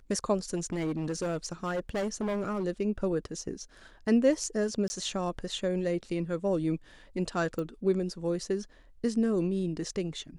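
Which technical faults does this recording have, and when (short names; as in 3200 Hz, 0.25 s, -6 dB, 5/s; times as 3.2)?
0.55–2.65 clipped -27.5 dBFS
4.88–4.9 gap 20 ms
7.59 pop -24 dBFS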